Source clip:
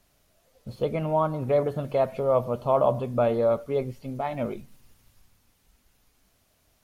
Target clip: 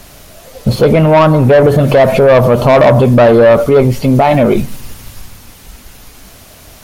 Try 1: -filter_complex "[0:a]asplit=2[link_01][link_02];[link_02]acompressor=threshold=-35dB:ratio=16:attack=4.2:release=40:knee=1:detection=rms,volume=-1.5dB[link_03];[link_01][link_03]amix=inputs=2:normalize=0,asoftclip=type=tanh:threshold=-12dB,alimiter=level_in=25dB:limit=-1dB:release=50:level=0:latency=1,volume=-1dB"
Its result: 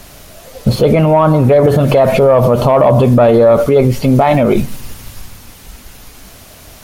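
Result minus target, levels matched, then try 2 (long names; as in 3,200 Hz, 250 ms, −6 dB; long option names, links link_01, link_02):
soft clipping: distortion −12 dB
-filter_complex "[0:a]asplit=2[link_01][link_02];[link_02]acompressor=threshold=-35dB:ratio=16:attack=4.2:release=40:knee=1:detection=rms,volume=-1.5dB[link_03];[link_01][link_03]amix=inputs=2:normalize=0,asoftclip=type=tanh:threshold=-21.5dB,alimiter=level_in=25dB:limit=-1dB:release=50:level=0:latency=1,volume=-1dB"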